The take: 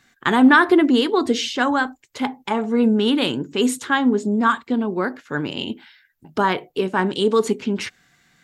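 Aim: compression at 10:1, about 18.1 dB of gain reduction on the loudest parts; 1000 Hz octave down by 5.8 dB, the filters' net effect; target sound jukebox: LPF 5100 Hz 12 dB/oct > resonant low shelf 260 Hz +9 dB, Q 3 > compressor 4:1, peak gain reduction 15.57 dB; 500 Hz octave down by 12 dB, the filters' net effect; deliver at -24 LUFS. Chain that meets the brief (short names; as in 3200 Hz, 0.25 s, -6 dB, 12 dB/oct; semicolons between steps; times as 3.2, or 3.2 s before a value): bell 500 Hz -9 dB; bell 1000 Hz -4 dB; compressor 10:1, threshold -29 dBFS; LPF 5100 Hz 12 dB/oct; resonant low shelf 260 Hz +9 dB, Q 3; compressor 4:1, threshold -34 dBFS; gain +12.5 dB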